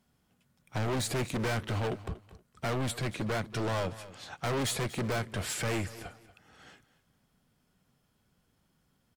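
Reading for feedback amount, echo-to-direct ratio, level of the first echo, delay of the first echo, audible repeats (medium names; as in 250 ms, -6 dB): 24%, -16.0 dB, -16.5 dB, 236 ms, 2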